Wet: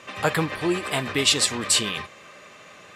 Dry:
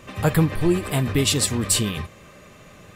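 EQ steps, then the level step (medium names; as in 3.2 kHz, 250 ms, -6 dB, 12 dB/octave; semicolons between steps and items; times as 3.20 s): high-pass 920 Hz 6 dB/octave; distance through air 57 m; +5.5 dB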